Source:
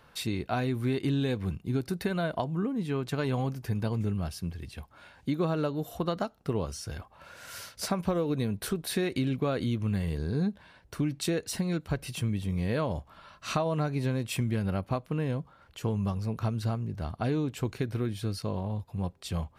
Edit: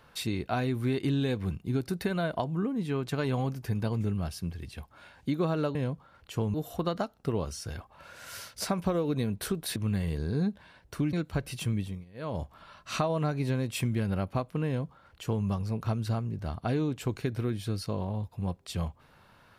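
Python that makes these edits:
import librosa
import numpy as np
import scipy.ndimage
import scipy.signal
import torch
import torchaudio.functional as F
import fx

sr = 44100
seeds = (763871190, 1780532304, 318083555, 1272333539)

y = fx.edit(x, sr, fx.cut(start_s=8.97, length_s=0.79),
    fx.cut(start_s=11.13, length_s=0.56),
    fx.fade_down_up(start_s=12.35, length_s=0.61, db=-24.0, fade_s=0.26),
    fx.duplicate(start_s=15.22, length_s=0.79, to_s=5.75), tone=tone)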